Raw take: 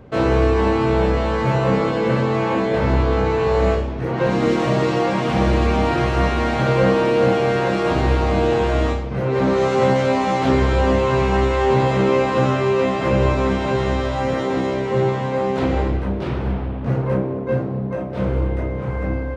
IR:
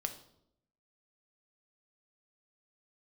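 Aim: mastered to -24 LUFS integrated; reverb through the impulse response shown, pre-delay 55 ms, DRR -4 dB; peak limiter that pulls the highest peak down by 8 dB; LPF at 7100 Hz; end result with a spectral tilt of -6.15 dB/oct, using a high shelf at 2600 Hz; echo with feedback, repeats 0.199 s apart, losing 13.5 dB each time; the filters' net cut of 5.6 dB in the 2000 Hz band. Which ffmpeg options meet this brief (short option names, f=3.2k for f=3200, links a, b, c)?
-filter_complex "[0:a]lowpass=7.1k,equalizer=f=2k:t=o:g=-3.5,highshelf=f=2.6k:g=-8.5,alimiter=limit=-14dB:level=0:latency=1,aecho=1:1:199|398:0.211|0.0444,asplit=2[a][b];[1:a]atrim=start_sample=2205,adelay=55[c];[b][c]afir=irnorm=-1:irlink=0,volume=3.5dB[d];[a][d]amix=inputs=2:normalize=0,volume=-6dB"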